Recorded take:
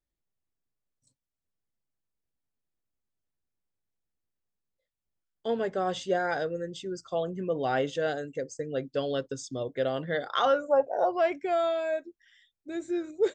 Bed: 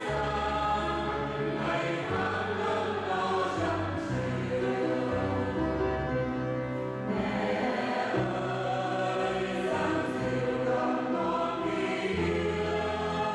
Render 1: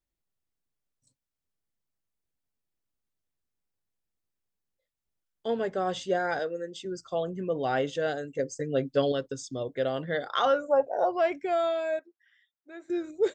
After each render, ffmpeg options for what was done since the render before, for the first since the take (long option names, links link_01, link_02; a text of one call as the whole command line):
ffmpeg -i in.wav -filter_complex "[0:a]asettb=1/sr,asplit=3[link_01][link_02][link_03];[link_01]atrim=end=6.394[link_04];[link_02]atrim=start=6.39:end=6.85,asetpts=PTS-STARTPTS,afade=type=in:duration=0.004:curve=qsin,afade=type=out:start_time=0.456:duration=0.004:curve=qsin,highpass=270[link_05];[link_03]atrim=start=6.846[link_06];[link_04][link_05]acrossfade=duration=0.004:curve1=hsin:curve2=qsin[link_07];[link_07][link_06]acrossfade=duration=0.004:curve1=qsin:curve2=hsin,asettb=1/sr,asplit=3[link_08][link_09][link_10];[link_08]atrim=end=8.384[link_11];[link_09]atrim=start=8.38:end=9.12,asetpts=PTS-STARTPTS,afade=type=in:duration=0.004:curve=qsin,afade=type=out:start_time=0.736:duration=0.004:curve=qsin,aecho=1:1:7.3:0.98,atrim=end_sample=32634[link_12];[link_10]atrim=start=9.116[link_13];[link_11][link_12]acrossfade=duration=0.004:curve1=hsin:curve2=qsin[link_14];[link_14][link_13]acrossfade=duration=0.004:curve1=qsin:curve2=hsin,asettb=1/sr,asplit=3[link_15][link_16][link_17];[link_15]atrim=end=11.994[link_18];[link_16]atrim=start=11.99:end=12.9,asetpts=PTS-STARTPTS,afade=type=in:duration=0.004:curve=qsin,afade=type=out:start_time=0.906:duration=0.004:curve=qsin,bandpass=frequency=1200:width_type=q:width=1.1[link_19];[link_17]atrim=start=12.896[link_20];[link_18][link_19]acrossfade=duration=0.004:curve1=hsin:curve2=qsin[link_21];[link_21][link_20]acrossfade=duration=0.004:curve1=qsin:curve2=hsin" out.wav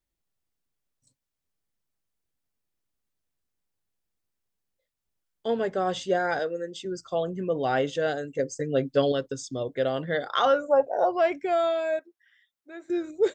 ffmpeg -i in.wav -af "volume=2.5dB" out.wav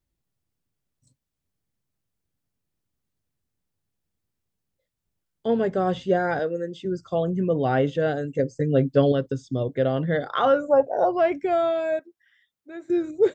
ffmpeg -i in.wav -filter_complex "[0:a]acrossover=split=3400[link_01][link_02];[link_02]acompressor=threshold=-54dB:ratio=4:attack=1:release=60[link_03];[link_01][link_03]amix=inputs=2:normalize=0,equalizer=frequency=110:width=0.39:gain=11" out.wav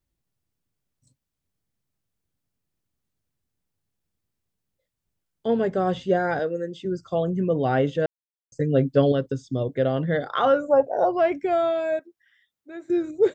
ffmpeg -i in.wav -filter_complex "[0:a]asplit=3[link_01][link_02][link_03];[link_01]atrim=end=8.06,asetpts=PTS-STARTPTS,afade=type=out:start_time=8.056:duration=0.004:curve=hsin[link_04];[link_02]atrim=start=8.06:end=8.52,asetpts=PTS-STARTPTS,volume=0[link_05];[link_03]atrim=start=8.52,asetpts=PTS-STARTPTS,afade=type=in:duration=0.004:curve=hsin[link_06];[link_04][link_05][link_06]concat=n=3:v=0:a=1" out.wav